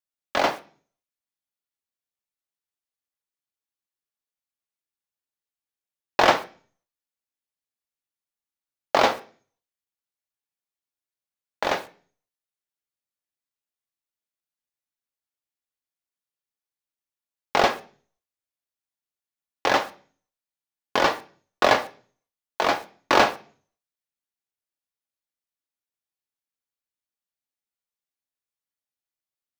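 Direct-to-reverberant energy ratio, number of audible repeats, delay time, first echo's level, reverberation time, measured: 7.0 dB, no echo audible, no echo audible, no echo audible, 0.40 s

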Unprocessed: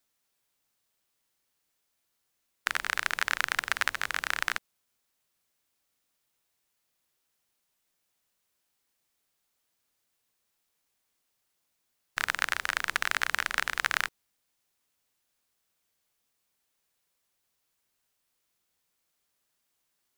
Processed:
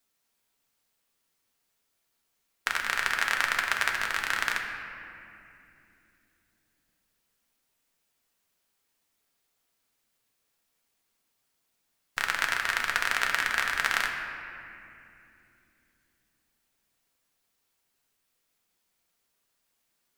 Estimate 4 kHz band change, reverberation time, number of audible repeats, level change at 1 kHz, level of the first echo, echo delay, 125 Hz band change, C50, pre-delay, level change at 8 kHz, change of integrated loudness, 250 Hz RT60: +1.5 dB, 2.9 s, no echo audible, +2.5 dB, no echo audible, no echo audible, +2.5 dB, 4.5 dB, 4 ms, +1.0 dB, +2.0 dB, 4.5 s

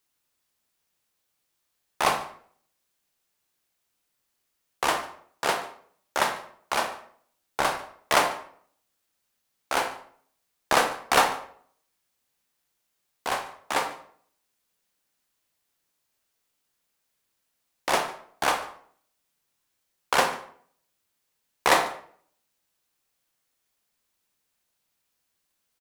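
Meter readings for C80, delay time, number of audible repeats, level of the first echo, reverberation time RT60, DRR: 12.0 dB, 145 ms, 1, −21.0 dB, 0.60 s, 5.5 dB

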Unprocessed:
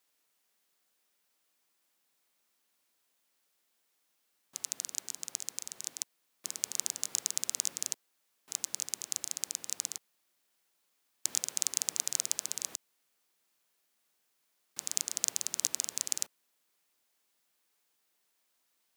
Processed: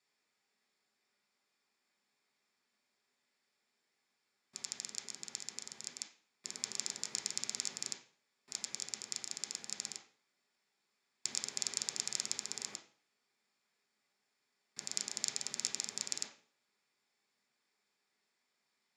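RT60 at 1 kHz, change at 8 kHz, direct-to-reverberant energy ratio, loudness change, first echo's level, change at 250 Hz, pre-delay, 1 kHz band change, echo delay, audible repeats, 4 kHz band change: 0.45 s, −6.5 dB, −3.5 dB, −5.5 dB, no echo audible, +1.0 dB, 3 ms, −1.0 dB, no echo audible, no echo audible, −1.5 dB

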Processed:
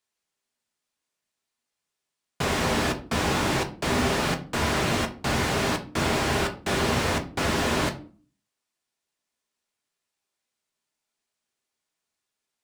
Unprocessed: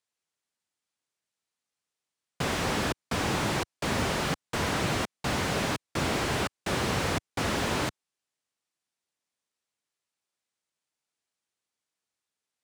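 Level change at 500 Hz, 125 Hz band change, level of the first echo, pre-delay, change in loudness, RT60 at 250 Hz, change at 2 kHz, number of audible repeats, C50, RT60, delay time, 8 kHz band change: +4.5 dB, +3.5 dB, no echo audible, 3 ms, +4.0 dB, 0.60 s, +4.0 dB, no echo audible, 14.5 dB, 0.40 s, no echo audible, +3.5 dB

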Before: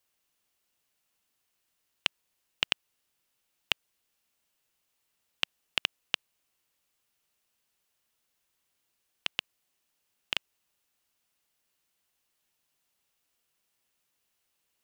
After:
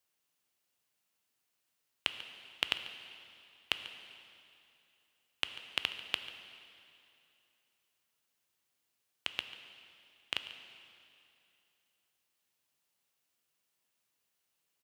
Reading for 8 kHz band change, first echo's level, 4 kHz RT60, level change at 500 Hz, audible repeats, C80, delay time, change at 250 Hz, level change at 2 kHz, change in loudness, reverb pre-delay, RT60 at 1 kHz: −5.0 dB, −17.0 dB, 2.5 s, −3.0 dB, 1, 9.5 dB, 142 ms, −3.0 dB, −3.5 dB, −5.0 dB, 5 ms, 2.7 s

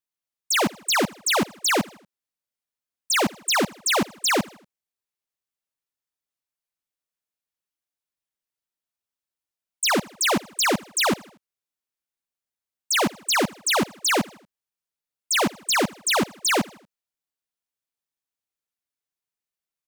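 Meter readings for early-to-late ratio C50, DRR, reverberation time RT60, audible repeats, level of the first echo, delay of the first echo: no reverb audible, no reverb audible, no reverb audible, 3, −23.0 dB, 79 ms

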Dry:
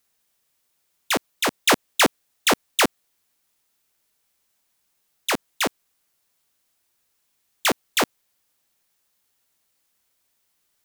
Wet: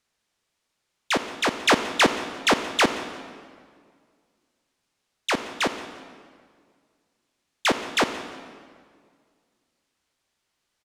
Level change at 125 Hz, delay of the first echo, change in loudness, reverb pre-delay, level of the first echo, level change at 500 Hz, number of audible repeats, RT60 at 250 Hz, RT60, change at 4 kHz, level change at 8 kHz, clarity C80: +0.5 dB, 174 ms, −1.0 dB, 28 ms, −19.5 dB, +0.5 dB, 1, 2.2 s, 1.9 s, −1.5 dB, −6.0 dB, 10.5 dB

